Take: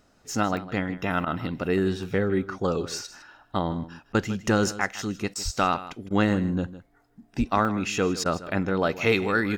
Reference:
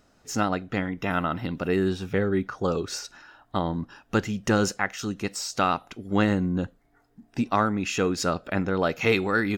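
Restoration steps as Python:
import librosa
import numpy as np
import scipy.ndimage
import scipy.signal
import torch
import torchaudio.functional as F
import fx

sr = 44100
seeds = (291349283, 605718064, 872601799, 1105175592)

y = fx.highpass(x, sr, hz=140.0, slope=24, at=(5.44, 5.56), fade=0.02)
y = fx.highpass(y, sr, hz=140.0, slope=24, at=(7.38, 7.5), fade=0.02)
y = fx.fix_interpolate(y, sr, at_s=(0.57, 1.2, 2.03, 4.95, 5.3, 7.65), length_ms=1.3)
y = fx.fix_interpolate(y, sr, at_s=(1.25, 4.13, 5.34, 6.09, 8.24), length_ms=14.0)
y = fx.fix_echo_inverse(y, sr, delay_ms=157, level_db=-15.5)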